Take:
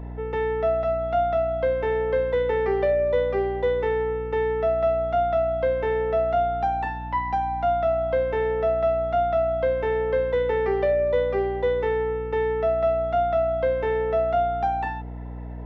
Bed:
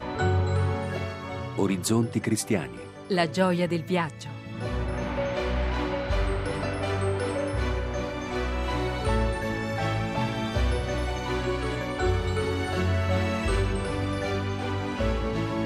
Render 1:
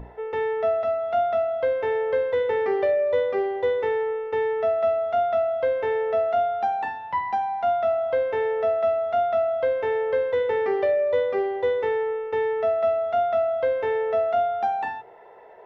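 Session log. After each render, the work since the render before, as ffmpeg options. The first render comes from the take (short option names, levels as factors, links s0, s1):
-af "bandreject=f=60:t=h:w=6,bandreject=f=120:t=h:w=6,bandreject=f=180:t=h:w=6,bandreject=f=240:t=h:w=6,bandreject=f=300:t=h:w=6,bandreject=f=360:t=h:w=6"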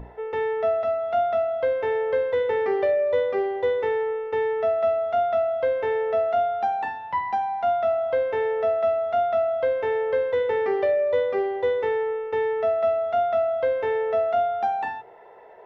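-af anull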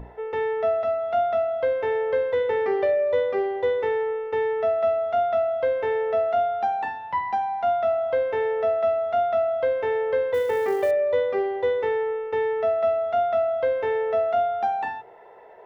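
-filter_complex "[0:a]asettb=1/sr,asplit=3[s0][s1][s2];[s0]atrim=end=10.344[s3];[s1]atrim=start=10.34:end=10.91,asetpts=PTS-STARTPTS,afade=t=in:d=0.004:c=qsin,afade=t=out:st=0.566:d=0.004:c=qsin,acrusher=bits=7:mode=log:mix=0:aa=0.000001[s4];[s2]atrim=start=10.906[s5];[s3][s4]acrossfade=d=0.004:c1=hsin:c2=qsin[s6];[s6][s5]acrossfade=d=0.004:c1=qsin:c2=hsin"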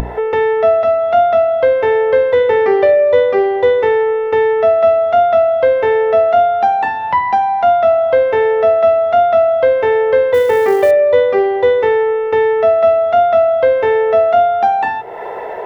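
-af "acompressor=mode=upward:threshold=0.0631:ratio=2.5,alimiter=level_in=3.76:limit=0.891:release=50:level=0:latency=1"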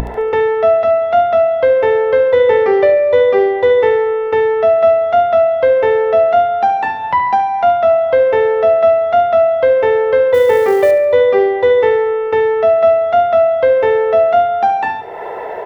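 -af "aecho=1:1:71|142|213|284|355|426:0.224|0.123|0.0677|0.0372|0.0205|0.0113"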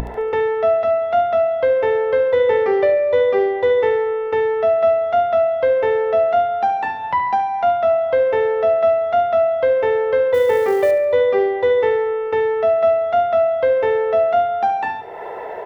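-af "volume=0.562"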